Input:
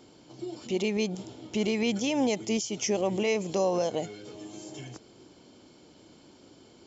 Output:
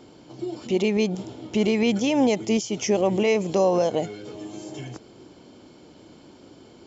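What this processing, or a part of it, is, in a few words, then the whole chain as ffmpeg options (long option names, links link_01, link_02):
behind a face mask: -af "highshelf=frequency=3400:gain=-7,volume=6.5dB"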